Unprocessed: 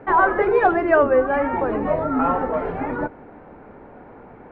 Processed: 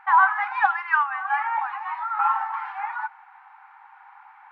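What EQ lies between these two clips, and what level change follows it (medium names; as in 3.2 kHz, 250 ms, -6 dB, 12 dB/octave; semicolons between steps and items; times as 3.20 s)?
brick-wall FIR high-pass 760 Hz; +1.0 dB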